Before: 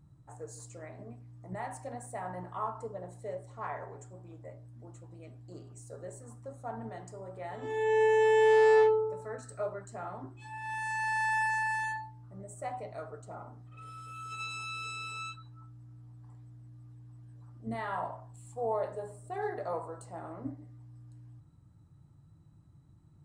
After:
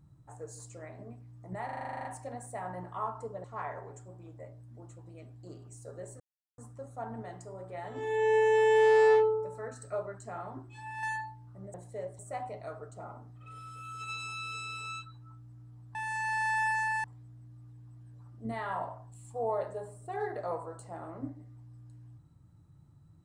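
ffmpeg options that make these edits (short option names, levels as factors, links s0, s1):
-filter_complex "[0:a]asplit=18[s0][s1][s2][s3][s4][s5][s6][s7][s8][s9][s10][s11][s12][s13][s14][s15][s16][s17];[s0]atrim=end=1.692[s18];[s1]atrim=start=1.648:end=1.692[s19];[s2]atrim=start=1.648:end=1.692[s20];[s3]atrim=start=1.648:end=1.692[s21];[s4]atrim=start=1.648:end=1.692[s22];[s5]atrim=start=1.648:end=1.692[s23];[s6]atrim=start=1.648:end=1.692[s24];[s7]atrim=start=1.648:end=1.692[s25];[s8]atrim=start=1.648:end=1.692[s26];[s9]atrim=start=1.648:end=1.692[s27];[s10]atrim=start=1.648:end=3.042[s28];[s11]atrim=start=3.488:end=6.25,asetpts=PTS-STARTPTS,afade=t=out:st=2.758:d=0.004:c=hsin,apad=pad_dur=0.38[s29];[s12]atrim=start=6.25:end=10.702,asetpts=PTS-STARTPTS,afade=t=in:d=0.004:c=hsin[s30];[s13]atrim=start=11.788:end=12.502[s31];[s14]atrim=start=3.038:end=3.492[s32];[s15]atrim=start=12.498:end=16.262[s33];[s16]atrim=start=10.698:end=11.792[s34];[s17]atrim=start=16.258[s35];[s18][s19]acrossfade=d=0.004:c1=hsin:c2=hsin[s36];[s36][s20]acrossfade=d=0.004:c1=hsin:c2=hsin[s37];[s37][s21]acrossfade=d=0.004:c1=hsin:c2=hsin[s38];[s38][s22]acrossfade=d=0.004:c1=hsin:c2=hsin[s39];[s39][s23]acrossfade=d=0.004:c1=hsin:c2=hsin[s40];[s40][s24]acrossfade=d=0.004:c1=hsin:c2=hsin[s41];[s41][s25]acrossfade=d=0.004:c1=hsin:c2=hsin[s42];[s42][s26]acrossfade=d=0.004:c1=hsin:c2=hsin[s43];[s43][s27]acrossfade=d=0.004:c1=hsin:c2=hsin[s44];[s44][s28]acrossfade=d=0.004:c1=hsin:c2=hsin[s45];[s29][s30]concat=n=2:v=0:a=1[s46];[s45][s46]acrossfade=d=0.004:c1=hsin:c2=hsin[s47];[s47][s31]acrossfade=d=0.004:c1=hsin:c2=hsin[s48];[s48][s32]acrossfade=d=0.004:c1=hsin:c2=hsin[s49];[s49][s33]acrossfade=d=0.004:c1=hsin:c2=hsin[s50];[s50][s34]acrossfade=d=0.004:c1=hsin:c2=hsin[s51];[s51][s35]acrossfade=d=0.004:c1=hsin:c2=hsin"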